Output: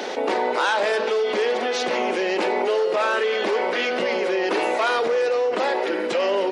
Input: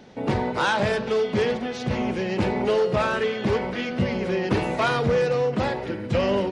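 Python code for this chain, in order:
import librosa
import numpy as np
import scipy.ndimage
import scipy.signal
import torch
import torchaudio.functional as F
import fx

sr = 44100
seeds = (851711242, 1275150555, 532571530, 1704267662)

y = scipy.signal.sosfilt(scipy.signal.butter(4, 360.0, 'highpass', fs=sr, output='sos'), x)
y = fx.env_flatten(y, sr, amount_pct=70)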